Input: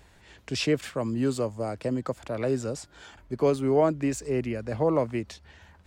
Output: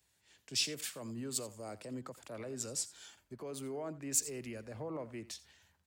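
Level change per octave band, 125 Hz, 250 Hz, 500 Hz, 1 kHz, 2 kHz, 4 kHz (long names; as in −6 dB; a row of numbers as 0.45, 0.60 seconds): −16.5, −16.0, −18.0, −17.0, −10.5, −2.0 decibels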